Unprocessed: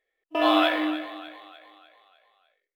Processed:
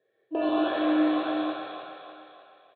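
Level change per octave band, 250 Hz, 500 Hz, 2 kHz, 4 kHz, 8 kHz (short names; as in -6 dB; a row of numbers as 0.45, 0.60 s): +2.5 dB, -1.0 dB, -6.0 dB, -9.0 dB, n/a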